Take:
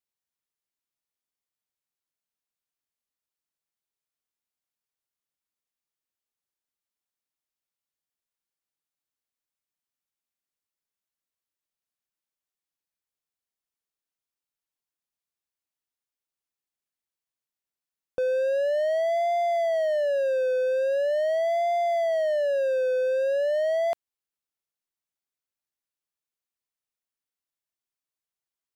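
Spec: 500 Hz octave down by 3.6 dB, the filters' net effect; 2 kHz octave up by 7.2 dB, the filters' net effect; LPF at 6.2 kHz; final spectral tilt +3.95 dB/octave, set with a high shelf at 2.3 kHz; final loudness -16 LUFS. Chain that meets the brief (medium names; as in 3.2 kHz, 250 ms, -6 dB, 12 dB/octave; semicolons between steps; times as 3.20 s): low-pass 6.2 kHz; peaking EQ 500 Hz -5.5 dB; peaking EQ 2 kHz +7 dB; treble shelf 2.3 kHz +4 dB; trim +11.5 dB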